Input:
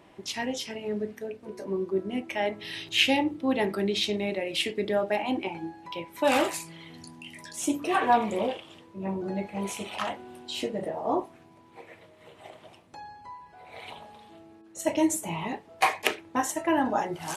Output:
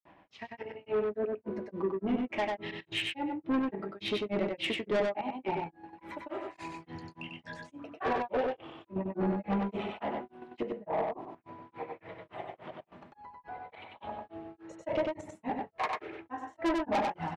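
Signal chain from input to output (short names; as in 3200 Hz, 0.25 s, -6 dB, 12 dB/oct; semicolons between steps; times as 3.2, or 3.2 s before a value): LPF 1700 Hz 12 dB/oct; AGC gain up to 12.5 dB; flange 0.13 Hz, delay 1.1 ms, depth 6 ms, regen -56%; grains 0.195 s, grains 3.5/s, pitch spread up and down by 0 st; step gate "x.x.xx.xxxxx" 72 bpm -12 dB; soft clip -25 dBFS, distortion -7 dB; on a send: echo 95 ms -3 dB; on the sum: mismatched tape noise reduction encoder only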